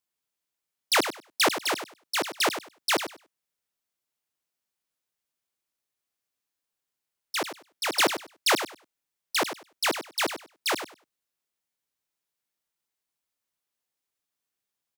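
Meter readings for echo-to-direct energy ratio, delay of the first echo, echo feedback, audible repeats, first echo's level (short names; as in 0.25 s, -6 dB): -10.0 dB, 98 ms, 18%, 2, -10.0 dB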